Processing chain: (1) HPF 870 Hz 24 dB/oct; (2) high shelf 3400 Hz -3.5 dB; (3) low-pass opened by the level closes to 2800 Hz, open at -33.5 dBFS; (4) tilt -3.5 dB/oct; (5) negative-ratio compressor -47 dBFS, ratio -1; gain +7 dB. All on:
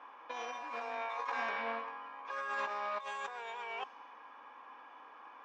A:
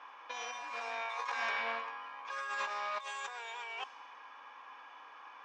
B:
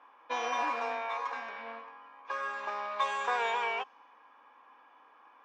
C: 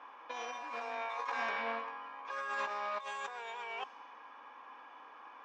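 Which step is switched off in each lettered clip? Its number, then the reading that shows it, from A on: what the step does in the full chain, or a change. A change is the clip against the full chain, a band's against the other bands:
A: 4, 250 Hz band -9.5 dB; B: 5, momentary loudness spread change -3 LU; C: 2, 8 kHz band +2.5 dB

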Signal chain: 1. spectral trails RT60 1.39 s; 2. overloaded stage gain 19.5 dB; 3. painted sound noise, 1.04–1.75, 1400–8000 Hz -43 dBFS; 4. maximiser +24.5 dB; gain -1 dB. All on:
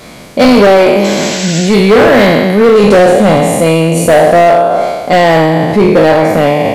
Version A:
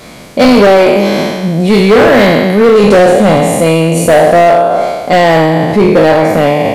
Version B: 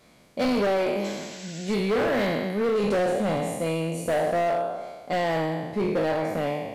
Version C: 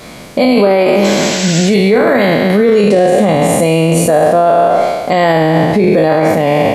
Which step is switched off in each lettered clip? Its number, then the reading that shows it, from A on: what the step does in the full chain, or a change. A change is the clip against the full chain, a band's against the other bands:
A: 3, 8 kHz band -2.5 dB; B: 4, crest factor change +2.0 dB; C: 2, distortion -10 dB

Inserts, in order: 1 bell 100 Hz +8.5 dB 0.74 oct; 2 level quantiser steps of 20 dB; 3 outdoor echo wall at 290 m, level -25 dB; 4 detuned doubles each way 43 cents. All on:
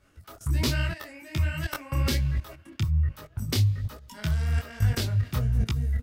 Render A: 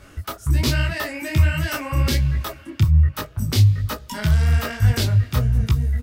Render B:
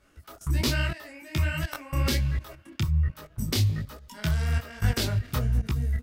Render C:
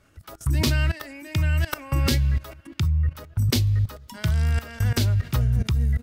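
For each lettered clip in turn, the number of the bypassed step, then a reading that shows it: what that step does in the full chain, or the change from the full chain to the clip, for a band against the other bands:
2, 1 kHz band +2.0 dB; 1, 125 Hz band -3.0 dB; 4, momentary loudness spread change -2 LU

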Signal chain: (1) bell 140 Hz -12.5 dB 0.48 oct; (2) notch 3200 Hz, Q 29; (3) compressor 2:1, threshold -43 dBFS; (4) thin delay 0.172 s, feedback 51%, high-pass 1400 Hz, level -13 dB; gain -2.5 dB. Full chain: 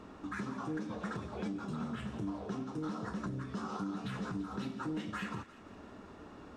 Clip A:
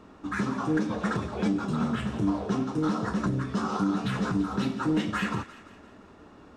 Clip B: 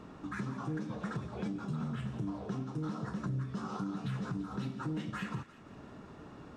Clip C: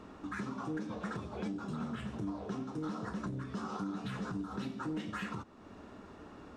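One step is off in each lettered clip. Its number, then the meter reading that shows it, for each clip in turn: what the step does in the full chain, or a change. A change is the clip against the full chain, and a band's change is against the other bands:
3, mean gain reduction 8.5 dB; 1, 125 Hz band +6.5 dB; 4, echo-to-direct -14.5 dB to none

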